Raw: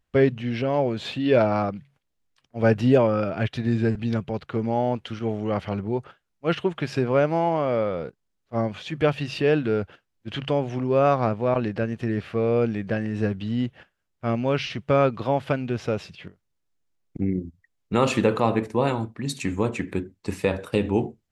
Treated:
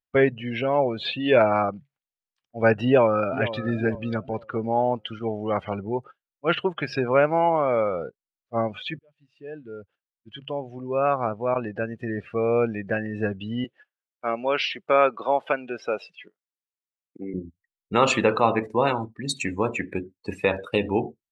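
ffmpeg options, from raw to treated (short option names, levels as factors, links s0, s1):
-filter_complex "[0:a]asplit=2[s0][s1];[s1]afade=t=in:st=2.86:d=0.01,afade=t=out:st=3.48:d=0.01,aecho=0:1:460|920|1380|1840:0.223872|0.0895488|0.0358195|0.0143278[s2];[s0][s2]amix=inputs=2:normalize=0,asettb=1/sr,asplit=3[s3][s4][s5];[s3]atrim=end=13.644[s6];[s4]atrim=start=13.64:end=17.34,asetpts=PTS-STARTPTS,afade=t=in:d=0.004:c=qsin,afade=t=out:st=3.696:d=0.004:c=qsin,highpass=340[s7];[s5]atrim=start=17.336[s8];[s6][s7]acrossfade=d=0.004:c1=hsin:c2=qsin[s9];[s9][s8]acrossfade=d=0.004:c1=qsin:c2=hsin,asplit=2[s10][s11];[s10]atrim=end=8.99,asetpts=PTS-STARTPTS,afade=t=out:st=8.986:d=0.004:c=hsin[s12];[s11]atrim=start=8.99,asetpts=PTS-STARTPTS,afade=t=in:d=3.61[s13];[s12][s13]concat=n=2:v=0:a=1,afftdn=nr=21:nf=-37,lowshelf=f=430:g=-12,volume=2"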